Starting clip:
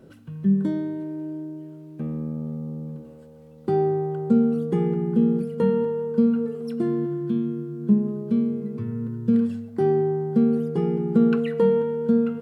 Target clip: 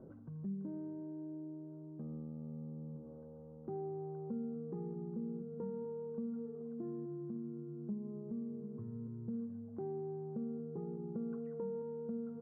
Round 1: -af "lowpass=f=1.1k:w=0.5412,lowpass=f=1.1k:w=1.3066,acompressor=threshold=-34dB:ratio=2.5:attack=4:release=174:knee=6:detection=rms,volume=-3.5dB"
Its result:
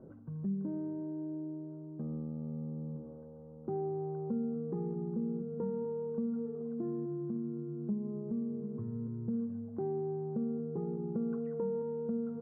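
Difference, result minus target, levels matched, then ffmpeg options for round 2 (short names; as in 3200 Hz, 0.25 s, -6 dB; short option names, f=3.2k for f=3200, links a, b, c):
compressor: peak gain reduction -6 dB
-af "lowpass=f=1.1k:w=0.5412,lowpass=f=1.1k:w=1.3066,acompressor=threshold=-44dB:ratio=2.5:attack=4:release=174:knee=6:detection=rms,volume=-3.5dB"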